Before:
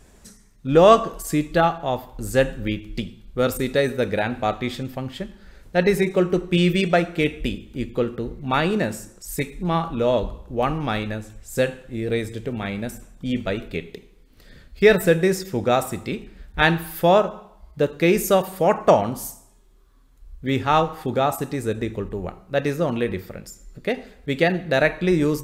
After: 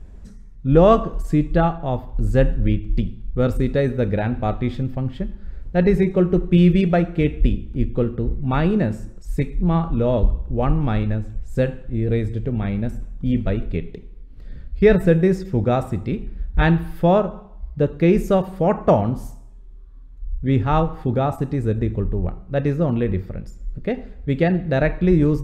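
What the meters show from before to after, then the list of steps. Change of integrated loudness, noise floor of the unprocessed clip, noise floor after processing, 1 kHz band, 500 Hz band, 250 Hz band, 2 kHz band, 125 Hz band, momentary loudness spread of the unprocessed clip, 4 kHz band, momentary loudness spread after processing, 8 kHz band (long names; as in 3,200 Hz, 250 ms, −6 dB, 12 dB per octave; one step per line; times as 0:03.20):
+1.5 dB, −52 dBFS, −40 dBFS, −2.5 dB, −0.5 dB, +4.0 dB, −5.5 dB, +7.5 dB, 14 LU, −8.5 dB, 12 LU, below −10 dB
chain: RIAA equalisation playback
level −3 dB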